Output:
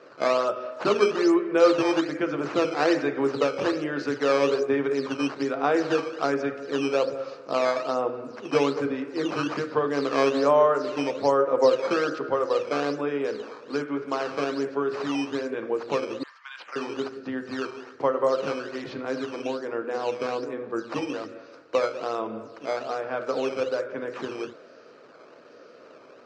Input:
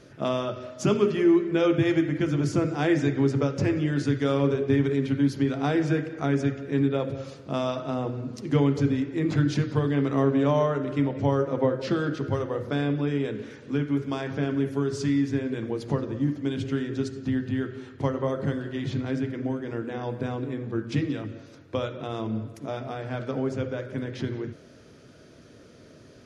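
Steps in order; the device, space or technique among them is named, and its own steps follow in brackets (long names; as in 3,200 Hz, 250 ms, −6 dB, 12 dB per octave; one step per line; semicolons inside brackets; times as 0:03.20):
0:16.23–0:16.76: Butterworth high-pass 1,000 Hz 48 dB per octave
circuit-bent sampling toy (sample-and-hold swept by an LFO 9×, swing 160% 1.2 Hz; loudspeaker in its box 470–4,900 Hz, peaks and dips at 500 Hz +5 dB, 1,200 Hz +5 dB, 2,000 Hz −5 dB, 3,400 Hz −10 dB)
level +5 dB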